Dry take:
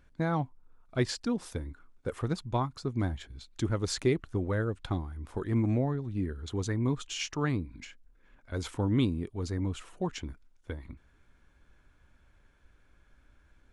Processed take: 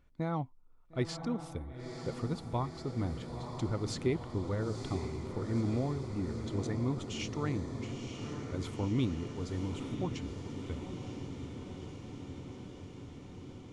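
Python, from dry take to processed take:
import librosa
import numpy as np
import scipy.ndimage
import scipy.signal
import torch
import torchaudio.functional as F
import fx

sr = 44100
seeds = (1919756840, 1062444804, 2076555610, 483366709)

y = fx.high_shelf(x, sr, hz=4700.0, db=-5.0)
y = fx.notch(y, sr, hz=1600.0, q=5.6)
y = fx.echo_diffused(y, sr, ms=956, feedback_pct=73, wet_db=-7)
y = y * 10.0 ** (-4.5 / 20.0)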